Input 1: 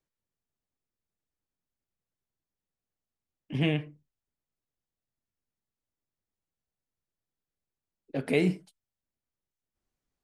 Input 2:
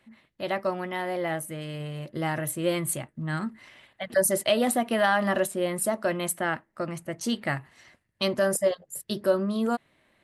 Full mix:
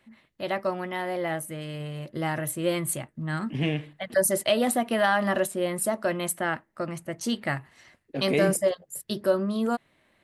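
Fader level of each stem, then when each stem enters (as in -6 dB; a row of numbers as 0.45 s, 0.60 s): 0.0 dB, 0.0 dB; 0.00 s, 0.00 s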